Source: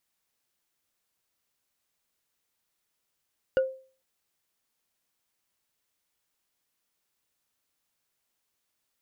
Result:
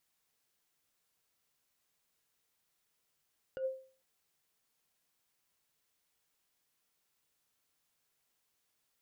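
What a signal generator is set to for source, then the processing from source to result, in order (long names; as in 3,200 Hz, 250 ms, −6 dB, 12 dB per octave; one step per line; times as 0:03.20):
struck wood bar, lowest mode 526 Hz, decay 0.41 s, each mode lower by 10 dB, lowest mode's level −17 dB
compressor whose output falls as the input rises −32 dBFS, ratio −1
tuned comb filter 150 Hz, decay 0.15 s, harmonics odd, mix 50%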